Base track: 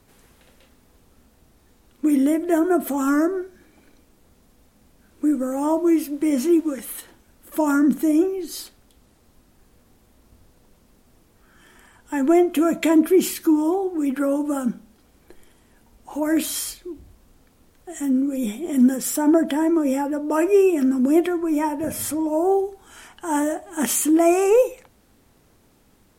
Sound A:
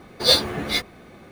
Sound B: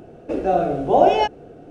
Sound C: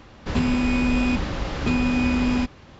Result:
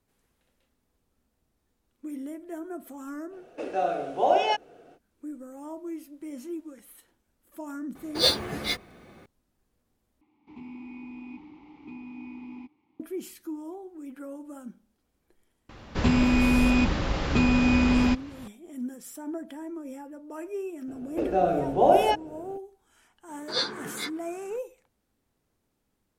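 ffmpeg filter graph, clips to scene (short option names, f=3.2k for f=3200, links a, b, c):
-filter_complex "[2:a]asplit=2[a][b];[1:a]asplit=2[c][d];[3:a]asplit=2[e][f];[0:a]volume=-18.5dB[g];[a]highpass=f=1.1k:p=1[h];[e]asplit=3[i][j][k];[i]bandpass=f=300:t=q:w=8,volume=0dB[l];[j]bandpass=f=870:t=q:w=8,volume=-6dB[m];[k]bandpass=f=2.24k:t=q:w=8,volume=-9dB[n];[l][m][n]amix=inputs=3:normalize=0[o];[d]highpass=f=140:w=0.5412,highpass=f=140:w=1.3066,equalizer=f=420:t=q:w=4:g=5,equalizer=f=620:t=q:w=4:g=-10,equalizer=f=1k:t=q:w=4:g=6,equalizer=f=1.5k:t=q:w=4:g=10,equalizer=f=2.8k:t=q:w=4:g=-7,lowpass=f=6.9k:w=0.5412,lowpass=f=6.9k:w=1.3066[p];[g]asplit=2[q][r];[q]atrim=end=10.214[s];[o]atrim=end=2.79,asetpts=PTS-STARTPTS,volume=-10dB[t];[r]atrim=start=12.996[u];[h]atrim=end=1.7,asetpts=PTS-STARTPTS,volume=-1.5dB,afade=t=in:d=0.05,afade=t=out:st=1.65:d=0.05,adelay=145089S[v];[c]atrim=end=1.31,asetpts=PTS-STARTPTS,volume=-5.5dB,afade=t=in:d=0.004:c=hsin,afade=t=out:st=1.306:d=0.004:c=hsin,adelay=7950[w];[f]atrim=end=2.79,asetpts=PTS-STARTPTS,afade=t=in:d=0.004:c=hsin,afade=t=out:st=2.786:d=0.004:c=hsin,adelay=15690[x];[b]atrim=end=1.7,asetpts=PTS-STARTPTS,volume=-4.5dB,afade=t=in:d=0.004:c=hsin,afade=t=out:st=1.696:d=0.004:c=hsin,adelay=20880[y];[p]atrim=end=1.31,asetpts=PTS-STARTPTS,volume=-11dB,afade=t=in:d=0.004:c=hsin,afade=t=out:st=1.306:d=0.004:c=hsin,adelay=23280[z];[s][t]acrossfade=d=0.004:c1=hsin:c2=hsin[aa];[aa][u]acrossfade=d=0.004:c1=hsin:c2=hsin[ab];[ab][v][w][x][y][z]amix=inputs=6:normalize=0"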